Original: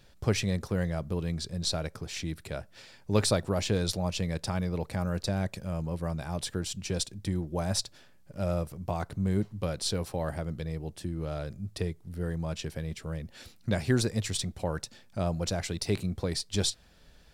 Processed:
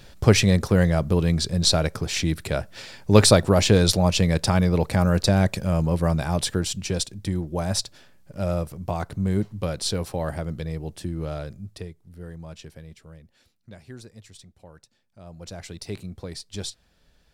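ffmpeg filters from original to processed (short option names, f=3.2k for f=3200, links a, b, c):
-af "volume=22.5dB,afade=t=out:st=6.13:d=0.91:silence=0.473151,afade=t=out:st=11.25:d=0.64:silence=0.298538,afade=t=out:st=12.61:d=0.93:silence=0.316228,afade=t=in:st=15.22:d=0.46:silence=0.266073"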